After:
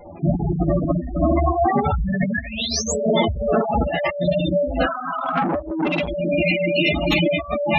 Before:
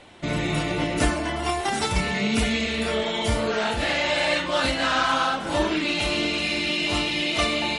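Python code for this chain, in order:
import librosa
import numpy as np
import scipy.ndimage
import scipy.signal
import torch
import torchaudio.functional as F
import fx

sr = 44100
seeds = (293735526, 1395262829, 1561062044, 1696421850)

p1 = fx.halfwave_hold(x, sr)
p2 = fx.spec_paint(p1, sr, seeds[0], shape='rise', start_s=2.34, length_s=0.54, low_hz=1600.0, high_hz=8100.0, level_db=-20.0)
p3 = fx.vibrato(p2, sr, rate_hz=7.0, depth_cents=63.0)
p4 = fx.graphic_eq_10(p3, sr, hz=(500, 1000, 2000, 8000), db=(-6, -10, -9, -3), at=(4.12, 4.65))
p5 = p4 + fx.room_early_taps(p4, sr, ms=(12, 74), db=(-3.0, -9.5), dry=0)
p6 = fx.rev_gated(p5, sr, seeds[1], gate_ms=90, shape='rising', drr_db=-2.0)
p7 = fx.over_compress(p6, sr, threshold_db=-16.0, ratio=-0.5)
p8 = fx.low_shelf(p7, sr, hz=91.0, db=5.0, at=(1.47, 2.06))
p9 = fx.spec_gate(p8, sr, threshold_db=-10, keep='strong')
p10 = fx.dereverb_blind(p9, sr, rt60_s=0.56)
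y = fx.transformer_sat(p10, sr, knee_hz=980.0, at=(5.18, 6.08))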